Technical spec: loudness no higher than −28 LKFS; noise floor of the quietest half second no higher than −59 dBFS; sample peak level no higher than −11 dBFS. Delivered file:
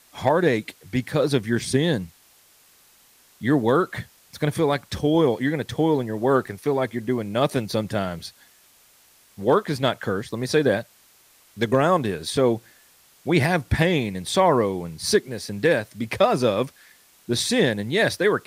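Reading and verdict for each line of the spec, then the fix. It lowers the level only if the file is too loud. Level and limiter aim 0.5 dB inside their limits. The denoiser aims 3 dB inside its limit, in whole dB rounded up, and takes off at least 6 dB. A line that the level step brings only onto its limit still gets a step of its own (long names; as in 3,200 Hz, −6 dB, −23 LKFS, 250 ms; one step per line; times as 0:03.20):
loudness −23.0 LKFS: out of spec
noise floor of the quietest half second −56 dBFS: out of spec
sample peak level −7.0 dBFS: out of spec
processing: level −5.5 dB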